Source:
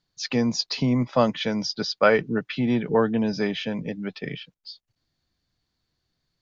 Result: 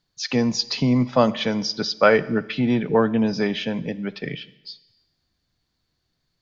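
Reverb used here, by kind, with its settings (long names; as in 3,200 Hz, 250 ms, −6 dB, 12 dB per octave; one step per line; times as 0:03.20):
four-comb reverb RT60 1 s, combs from 28 ms, DRR 17 dB
level +2.5 dB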